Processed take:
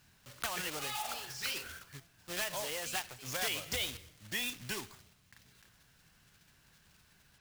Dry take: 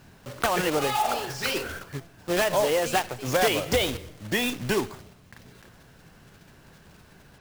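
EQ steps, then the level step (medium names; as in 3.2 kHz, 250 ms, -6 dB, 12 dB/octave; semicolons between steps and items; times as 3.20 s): amplifier tone stack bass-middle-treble 5-5-5; 0.0 dB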